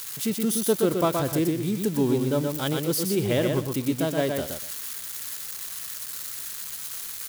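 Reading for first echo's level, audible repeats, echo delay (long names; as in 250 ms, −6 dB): −4.5 dB, 2, 122 ms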